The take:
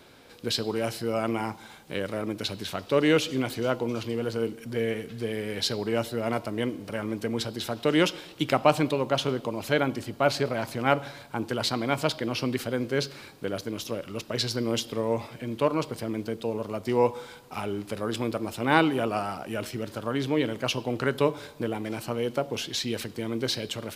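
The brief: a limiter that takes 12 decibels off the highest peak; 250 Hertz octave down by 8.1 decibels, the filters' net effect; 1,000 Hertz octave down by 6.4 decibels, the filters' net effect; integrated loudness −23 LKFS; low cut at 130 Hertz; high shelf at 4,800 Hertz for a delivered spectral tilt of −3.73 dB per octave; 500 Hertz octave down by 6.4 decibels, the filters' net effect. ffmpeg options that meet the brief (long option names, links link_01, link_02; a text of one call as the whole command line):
ffmpeg -i in.wav -af "highpass=130,equalizer=frequency=250:width_type=o:gain=-8.5,equalizer=frequency=500:width_type=o:gain=-3.5,equalizer=frequency=1000:width_type=o:gain=-7.5,highshelf=frequency=4800:gain=8,volume=11dB,alimiter=limit=-8.5dB:level=0:latency=1" out.wav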